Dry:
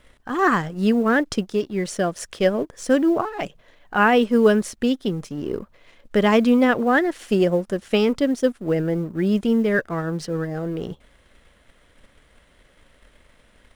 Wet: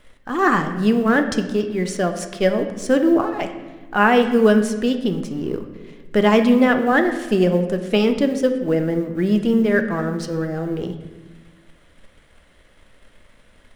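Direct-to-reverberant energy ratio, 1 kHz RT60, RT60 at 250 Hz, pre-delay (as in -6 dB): 6.5 dB, 1.2 s, 1.9 s, 3 ms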